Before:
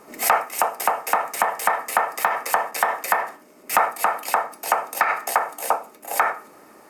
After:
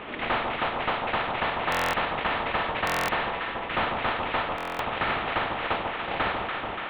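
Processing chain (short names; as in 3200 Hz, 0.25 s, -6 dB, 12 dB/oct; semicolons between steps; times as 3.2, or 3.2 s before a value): CVSD 16 kbps; echo with dull and thin repeats by turns 0.144 s, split 1100 Hz, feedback 77%, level -5.5 dB; stuck buffer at 1.7/2.85/4.56, samples 1024, times 9; spectral compressor 2:1; gain -2 dB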